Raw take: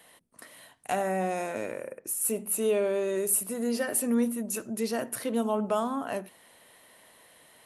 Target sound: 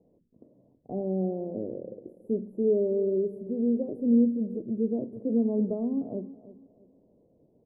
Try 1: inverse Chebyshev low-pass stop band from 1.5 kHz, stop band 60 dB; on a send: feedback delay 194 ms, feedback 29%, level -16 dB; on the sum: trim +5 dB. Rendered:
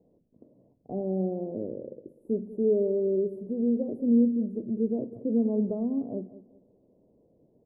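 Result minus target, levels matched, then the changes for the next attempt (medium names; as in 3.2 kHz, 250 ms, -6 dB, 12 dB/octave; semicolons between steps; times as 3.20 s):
echo 130 ms early
change: feedback delay 324 ms, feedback 29%, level -16 dB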